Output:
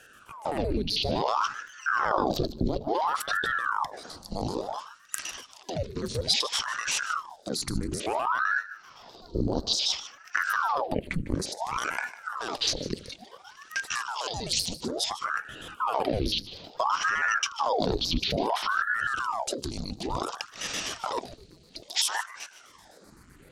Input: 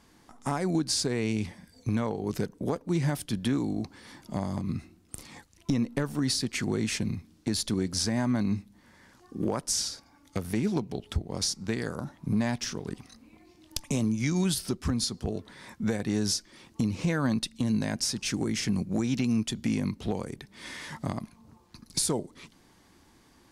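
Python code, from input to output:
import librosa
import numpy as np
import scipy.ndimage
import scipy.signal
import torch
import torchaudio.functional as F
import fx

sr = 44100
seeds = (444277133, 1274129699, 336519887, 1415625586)

p1 = fx.pitch_trill(x, sr, semitones=-8.0, every_ms=64)
p2 = fx.peak_eq(p1, sr, hz=4300.0, db=12.5, octaves=0.25)
p3 = fx.over_compress(p2, sr, threshold_db=-33.0, ratio=-0.5)
p4 = p2 + (p3 * librosa.db_to_amplitude(3.0))
p5 = fx.phaser_stages(p4, sr, stages=4, low_hz=120.0, high_hz=2100.0, hz=0.13, feedback_pct=35)
p6 = p5 + fx.echo_single(p5, sr, ms=150, db=-15.5, dry=0)
y = fx.ring_lfo(p6, sr, carrier_hz=840.0, swing_pct=90, hz=0.58)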